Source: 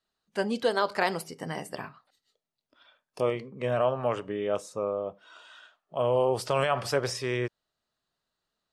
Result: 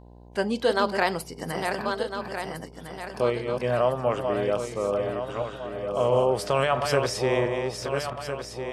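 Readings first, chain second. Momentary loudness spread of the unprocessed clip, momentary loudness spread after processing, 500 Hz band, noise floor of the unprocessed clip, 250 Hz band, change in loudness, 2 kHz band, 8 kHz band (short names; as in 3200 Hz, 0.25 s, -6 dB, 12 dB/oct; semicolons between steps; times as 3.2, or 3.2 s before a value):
11 LU, 10 LU, +4.5 dB, -85 dBFS, +4.5 dB, +3.0 dB, +4.0 dB, +4.0 dB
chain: regenerating reverse delay 0.678 s, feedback 61%, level -5 dB; buzz 60 Hz, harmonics 17, -51 dBFS -5 dB/oct; gain +2.5 dB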